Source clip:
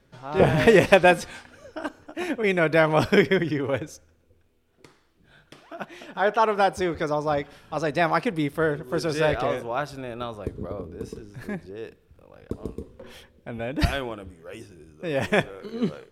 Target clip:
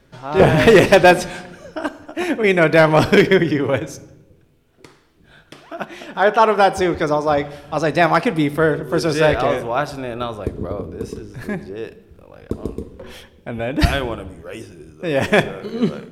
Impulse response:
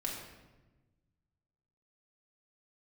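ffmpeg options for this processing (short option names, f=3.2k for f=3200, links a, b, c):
-filter_complex "[0:a]volume=11.5dB,asoftclip=hard,volume=-11.5dB,asplit=2[a][b];[1:a]atrim=start_sample=2205,asetrate=57330,aresample=44100[c];[b][c]afir=irnorm=-1:irlink=0,volume=-11dB[d];[a][d]amix=inputs=2:normalize=0,volume=6dB"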